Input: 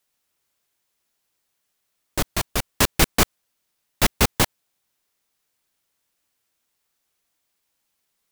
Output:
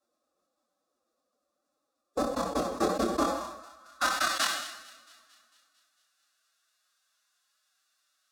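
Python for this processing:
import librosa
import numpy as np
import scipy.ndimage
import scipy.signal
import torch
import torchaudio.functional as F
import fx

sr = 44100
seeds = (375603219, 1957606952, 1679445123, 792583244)

p1 = fx.over_compress(x, sr, threshold_db=-26.0, ratio=-1.0)
p2 = x + F.gain(torch.from_numpy(p1), 2.5).numpy()
p3 = fx.high_shelf(p2, sr, hz=12000.0, db=-6.5)
p4 = fx.fixed_phaser(p3, sr, hz=440.0, stages=8)
p5 = p4 + fx.echo_thinned(p4, sr, ms=225, feedback_pct=63, hz=770.0, wet_db=-20, dry=0)
p6 = fx.rev_plate(p5, sr, seeds[0], rt60_s=2.5, hf_ratio=0.85, predelay_ms=0, drr_db=15.0)
p7 = fx.filter_sweep_bandpass(p6, sr, from_hz=500.0, to_hz=2000.0, start_s=3.14, end_s=4.41, q=1.9)
p8 = fx.high_shelf(p7, sr, hz=2900.0, db=9.0)
p9 = fx.doubler(p8, sr, ms=24.0, db=-7.5)
p10 = fx.pitch_keep_formants(p9, sr, semitones=6.0)
y = fx.sustainer(p10, sr, db_per_s=61.0)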